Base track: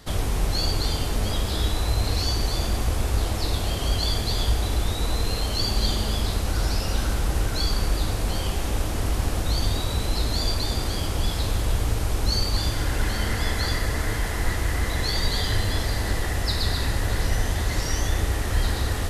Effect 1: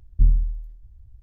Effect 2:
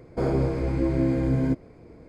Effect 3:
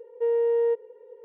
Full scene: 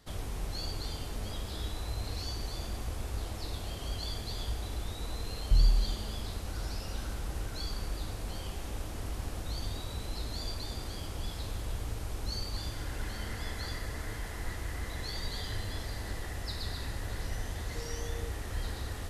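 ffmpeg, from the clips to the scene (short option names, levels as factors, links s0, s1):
-filter_complex "[0:a]volume=0.224[s0];[1:a]alimiter=level_in=4.22:limit=0.891:release=50:level=0:latency=1[s1];[3:a]acompressor=threshold=0.02:ratio=6:attack=3.2:release=140:knee=1:detection=peak[s2];[s1]atrim=end=1.22,asetpts=PTS-STARTPTS,volume=0.178,afade=t=in:d=0.004:c=hsin,afade=t=out:st=1.216:d=0.004:c=hsin,adelay=5320[s3];[s2]atrim=end=1.24,asetpts=PTS-STARTPTS,volume=0.251,afade=t=in:d=0.004:c=hsin,afade=t=out:st=1.236:d=0.004:c=hsin,adelay=17550[s4];[s0][s3][s4]amix=inputs=3:normalize=0"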